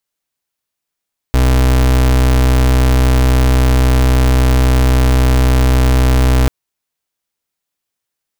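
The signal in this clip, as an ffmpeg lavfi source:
-f lavfi -i "aevalsrc='0.316*(2*lt(mod(63.7*t,1),0.35)-1)':d=5.14:s=44100"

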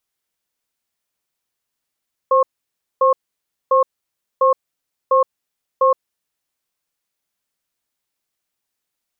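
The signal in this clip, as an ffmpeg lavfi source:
-f lavfi -i "aevalsrc='0.224*(sin(2*PI*525*t)+sin(2*PI*1080*t))*clip(min(mod(t,0.7),0.12-mod(t,0.7))/0.005,0,1)':d=3.97:s=44100"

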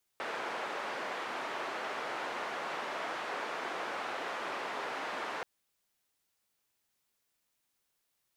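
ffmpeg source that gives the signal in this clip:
-f lavfi -i "anoisesrc=c=white:d=5.23:r=44100:seed=1,highpass=f=420,lowpass=f=1400,volume=-20.2dB"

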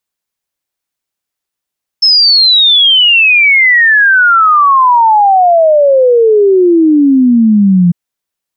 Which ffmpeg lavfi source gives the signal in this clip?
-f lavfi -i "aevalsrc='0.668*clip(min(t,5.9-t)/0.01,0,1)*sin(2*PI*5300*5.9/log(170/5300)*(exp(log(170/5300)*t/5.9)-1))':d=5.9:s=44100"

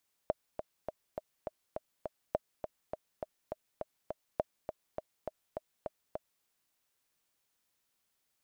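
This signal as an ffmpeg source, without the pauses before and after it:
-f lavfi -i "aevalsrc='pow(10,(-16-8*gte(mod(t,7*60/205),60/205))/20)*sin(2*PI*623*mod(t,60/205))*exp(-6.91*mod(t,60/205)/0.03)':d=6.14:s=44100"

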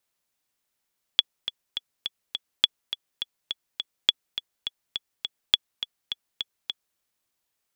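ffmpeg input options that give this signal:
-f lavfi -i "aevalsrc='pow(10,(-3-12*gte(mod(t,5*60/207),60/207))/20)*sin(2*PI*3390*mod(t,60/207))*exp(-6.91*mod(t,60/207)/0.03)':d=5.79:s=44100"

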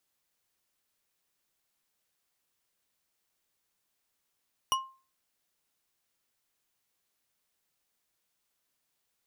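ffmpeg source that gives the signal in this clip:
-f lavfi -i "aevalsrc='0.075*pow(10,-3*t/0.36)*sin(2*PI*1060*t)+0.0531*pow(10,-3*t/0.177)*sin(2*PI*2922.4*t)+0.0376*pow(10,-3*t/0.111)*sin(2*PI*5728.2*t)+0.0266*pow(10,-3*t/0.078)*sin(2*PI*9469*t)+0.0188*pow(10,-3*t/0.059)*sin(2*PI*14140.4*t)':d=0.89:s=44100"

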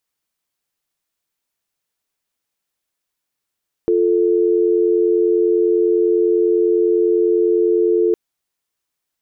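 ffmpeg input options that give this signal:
-f lavfi -i "aevalsrc='0.178*(sin(2*PI*350*t)+sin(2*PI*440*t))':d=4.26:s=44100"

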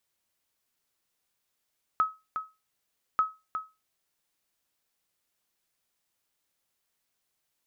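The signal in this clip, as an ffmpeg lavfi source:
-f lavfi -i "aevalsrc='0.15*(sin(2*PI*1280*mod(t,1.19))*exp(-6.91*mod(t,1.19)/0.25)+0.376*sin(2*PI*1280*max(mod(t,1.19)-0.36,0))*exp(-6.91*max(mod(t,1.19)-0.36,0)/0.25))':d=2.38:s=44100"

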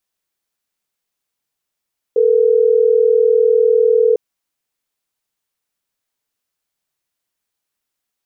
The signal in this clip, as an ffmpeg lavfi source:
-f lavfi -i "aevalsrc='0.251*(sin(2*PI*440*t)+sin(2*PI*480*t))*clip(min(mod(t,6),2-mod(t,6))/0.005,0,1)':d=3.12:s=44100"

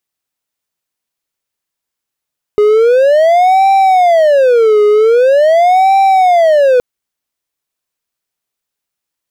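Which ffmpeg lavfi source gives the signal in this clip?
-f lavfi -i "aevalsrc='0.708*(1-4*abs(mod((598.5*t-181.5/(2*PI*0.44)*sin(2*PI*0.44*t))+0.25,1)-0.5))':d=4.22:s=44100"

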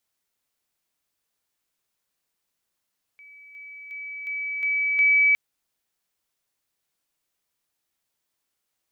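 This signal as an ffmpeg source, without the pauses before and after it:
-f lavfi -i "aevalsrc='pow(10,(-45+6*floor(t/0.36))/20)*sin(2*PI*2290*t)':d=2.16:s=44100"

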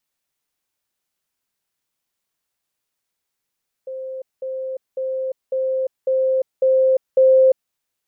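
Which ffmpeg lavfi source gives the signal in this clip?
-f lavfi -i "aevalsrc='pow(10,(-27+3*floor(t/0.55))/20)*sin(2*PI*524*t)*clip(min(mod(t,0.55),0.35-mod(t,0.55))/0.005,0,1)':d=3.85:s=44100"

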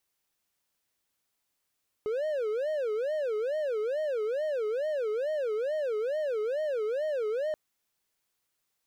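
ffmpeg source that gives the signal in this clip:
-f lavfi -i "aevalsrc='0.0531*(1-4*abs(mod((522.5*t-100.5/(2*PI*2.3)*sin(2*PI*2.3*t))+0.25,1)-0.5))':d=5.48:s=44100"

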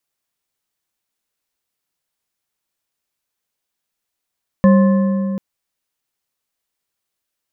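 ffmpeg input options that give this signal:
-f lavfi -i "aevalsrc='0.473*pow(10,-3*t/3.3)*sin(2*PI*195*t)+0.211*pow(10,-3*t/2.434)*sin(2*PI*537.6*t)+0.0944*pow(10,-3*t/1.989)*sin(2*PI*1053.8*t)+0.0422*pow(10,-3*t/1.711)*sin(2*PI*1741.9*t)':d=0.74:s=44100"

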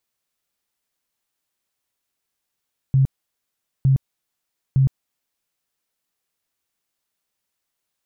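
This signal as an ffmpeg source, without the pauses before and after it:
-f lavfi -i "aevalsrc='0.251*sin(2*PI*134*mod(t,0.91))*lt(mod(t,0.91),15/134)':d=2.73:s=44100"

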